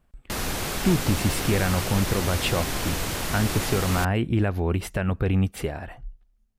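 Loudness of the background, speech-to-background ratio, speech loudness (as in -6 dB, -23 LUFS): -28.5 LUFS, 2.5 dB, -26.0 LUFS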